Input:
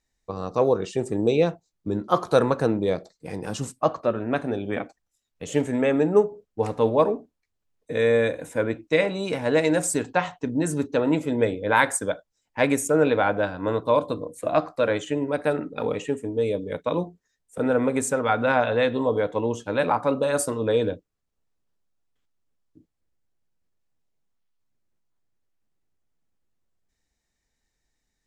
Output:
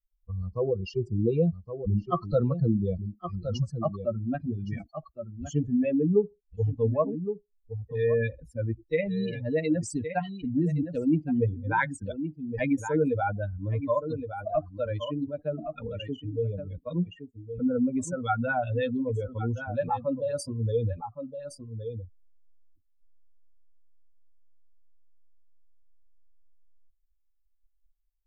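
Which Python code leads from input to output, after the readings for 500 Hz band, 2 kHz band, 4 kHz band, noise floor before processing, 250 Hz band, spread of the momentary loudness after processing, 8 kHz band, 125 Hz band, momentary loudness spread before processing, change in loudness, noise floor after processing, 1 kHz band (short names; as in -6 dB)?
-7.0 dB, -8.5 dB, -10.5 dB, -79 dBFS, -2.5 dB, 11 LU, -13.0 dB, +3.5 dB, 10 LU, -5.5 dB, -69 dBFS, -7.0 dB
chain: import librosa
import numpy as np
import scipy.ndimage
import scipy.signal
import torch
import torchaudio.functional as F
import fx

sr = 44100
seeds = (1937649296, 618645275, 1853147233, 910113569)

y = fx.bin_expand(x, sr, power=3.0)
y = fx.env_lowpass_down(y, sr, base_hz=2600.0, full_db=-23.5)
y = fx.riaa(y, sr, side='playback')
y = y + 10.0 ** (-18.0 / 20.0) * np.pad(y, (int(1117 * sr / 1000.0), 0))[:len(y)]
y = fx.env_flatten(y, sr, amount_pct=50)
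y = y * librosa.db_to_amplitude(-7.0)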